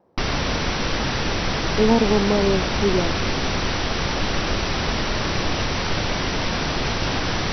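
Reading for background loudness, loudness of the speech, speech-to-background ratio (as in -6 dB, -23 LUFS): -23.5 LUFS, -21.5 LUFS, 2.0 dB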